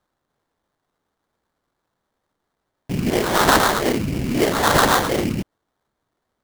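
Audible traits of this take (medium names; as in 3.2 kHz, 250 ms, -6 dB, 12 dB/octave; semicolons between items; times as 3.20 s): phasing stages 8, 3.9 Hz, lowest notch 720–3000 Hz; aliases and images of a low sample rate 2.6 kHz, jitter 20%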